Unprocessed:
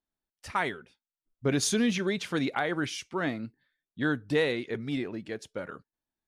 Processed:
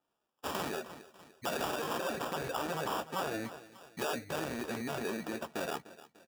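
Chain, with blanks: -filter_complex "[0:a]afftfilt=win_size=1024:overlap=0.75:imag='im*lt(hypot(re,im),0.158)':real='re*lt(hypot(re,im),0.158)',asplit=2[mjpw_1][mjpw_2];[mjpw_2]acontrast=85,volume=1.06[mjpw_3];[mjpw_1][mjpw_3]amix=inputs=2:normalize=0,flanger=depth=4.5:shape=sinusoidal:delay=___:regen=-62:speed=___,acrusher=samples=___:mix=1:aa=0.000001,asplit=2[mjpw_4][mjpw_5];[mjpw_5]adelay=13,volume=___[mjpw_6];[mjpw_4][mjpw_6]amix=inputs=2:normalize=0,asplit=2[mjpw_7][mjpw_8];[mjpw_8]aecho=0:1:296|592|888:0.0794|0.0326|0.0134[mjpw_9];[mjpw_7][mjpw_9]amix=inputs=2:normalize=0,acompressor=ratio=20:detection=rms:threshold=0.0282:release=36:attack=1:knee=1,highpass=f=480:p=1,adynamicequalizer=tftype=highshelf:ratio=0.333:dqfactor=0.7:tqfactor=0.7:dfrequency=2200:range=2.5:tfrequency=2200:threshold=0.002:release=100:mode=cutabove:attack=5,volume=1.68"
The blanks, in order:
0.5, 0.88, 21, 0.282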